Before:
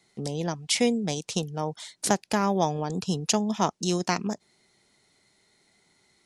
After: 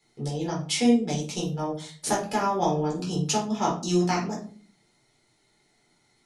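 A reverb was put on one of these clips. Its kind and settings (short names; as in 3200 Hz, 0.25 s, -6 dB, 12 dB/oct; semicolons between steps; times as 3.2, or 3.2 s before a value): shoebox room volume 290 m³, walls furnished, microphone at 4.1 m; gain -8 dB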